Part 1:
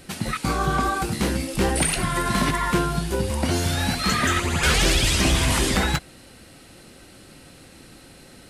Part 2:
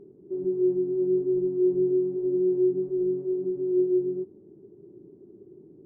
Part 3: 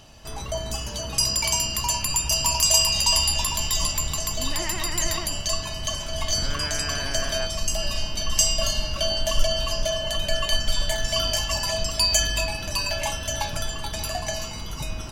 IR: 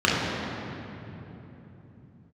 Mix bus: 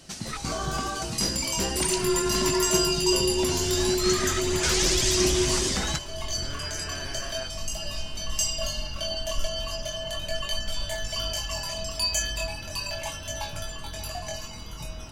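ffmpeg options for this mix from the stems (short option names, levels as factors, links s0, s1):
-filter_complex "[0:a]firequalizer=gain_entry='entry(2700,0);entry(5900,13);entry(11000,-3)':delay=0.05:min_phase=1,volume=0.376[s0];[1:a]adelay=1450,volume=0.708[s1];[2:a]flanger=delay=20:depth=5.1:speed=0.37,volume=0.708[s2];[s0][s1][s2]amix=inputs=3:normalize=0"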